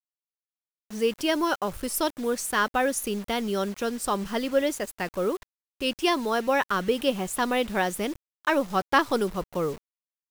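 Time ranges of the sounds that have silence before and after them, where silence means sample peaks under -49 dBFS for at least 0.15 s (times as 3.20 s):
0.90–5.43 s
5.80–8.16 s
8.45–9.78 s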